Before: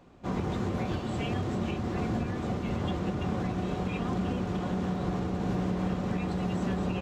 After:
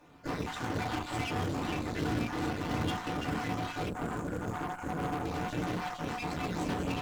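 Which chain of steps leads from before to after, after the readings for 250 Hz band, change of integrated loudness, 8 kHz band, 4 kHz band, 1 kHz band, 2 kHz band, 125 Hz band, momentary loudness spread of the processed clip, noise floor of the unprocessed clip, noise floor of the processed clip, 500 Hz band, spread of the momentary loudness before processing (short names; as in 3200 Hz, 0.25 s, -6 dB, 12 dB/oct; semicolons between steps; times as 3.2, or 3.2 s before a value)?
-5.0 dB, -3.0 dB, n/a, +2.5 dB, +1.5 dB, +3.5 dB, -5.5 dB, 4 LU, -35 dBFS, -42 dBFS, -3.5 dB, 2 LU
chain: random spectral dropouts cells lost 33%; tilt shelf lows -6 dB, about 700 Hz; FDN reverb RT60 0.32 s, low-frequency decay 1.45×, high-frequency decay 0.5×, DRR -4 dB; spectral delete 3.89–5.25, 1700–6300 Hz; in parallel at -11 dB: companded quantiser 4-bit; on the sum: added harmonics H 8 -18 dB, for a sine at -14.5 dBFS; gain -8 dB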